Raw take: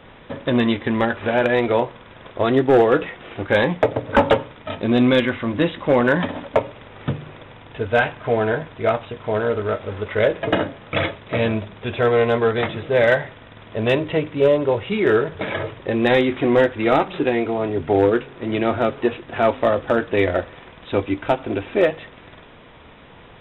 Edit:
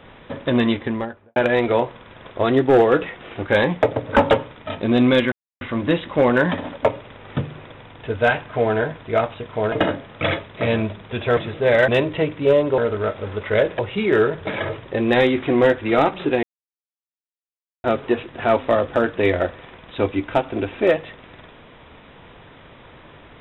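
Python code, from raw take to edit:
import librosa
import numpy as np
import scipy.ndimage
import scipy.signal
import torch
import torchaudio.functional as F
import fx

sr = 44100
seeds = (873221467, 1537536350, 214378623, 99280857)

y = fx.studio_fade_out(x, sr, start_s=0.67, length_s=0.69)
y = fx.edit(y, sr, fx.insert_silence(at_s=5.32, length_s=0.29),
    fx.move(start_s=9.43, length_s=1.01, to_s=14.73),
    fx.cut(start_s=12.09, length_s=0.57),
    fx.cut(start_s=13.17, length_s=0.66),
    fx.silence(start_s=17.37, length_s=1.41), tone=tone)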